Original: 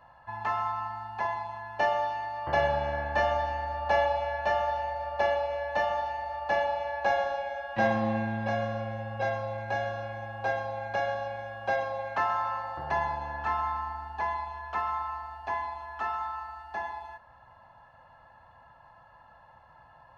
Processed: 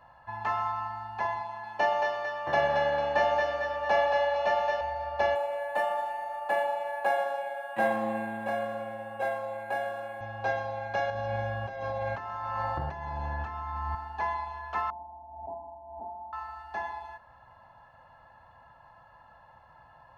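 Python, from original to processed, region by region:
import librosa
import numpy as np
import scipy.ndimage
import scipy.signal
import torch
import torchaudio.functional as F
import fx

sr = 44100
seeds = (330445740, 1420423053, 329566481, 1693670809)

y = fx.chain(x, sr, fx.highpass(hz=140.0, slope=12),
    fx.echo_thinned(ms=225, feedback_pct=52, hz=400.0, wet_db=-4.0), at=(1.41, 4.81))
y = fx.chain(y, sr, fx.highpass(hz=260.0, slope=12),
    fx.air_absorb(metres=85.0),
    fx.resample_linear(factor=4), at=(5.35, 10.21))
y = fx.chain(y, sr, fx.low_shelf(hz=250.0, db=11.5),
    fx.over_compress(threshold_db=-34.0, ratio=-1.0), at=(11.1, 13.95))
y = fx.chain(y, sr, fx.cheby_ripple(hz=950.0, ripple_db=9),
    fx.pre_swell(db_per_s=49.0), at=(14.9, 16.33))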